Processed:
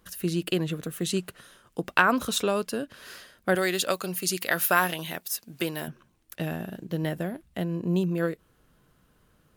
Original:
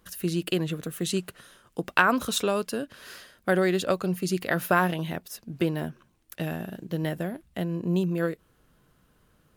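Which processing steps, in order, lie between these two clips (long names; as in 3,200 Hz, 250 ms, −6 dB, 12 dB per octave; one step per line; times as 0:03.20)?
0:03.55–0:05.88: spectral tilt +3 dB per octave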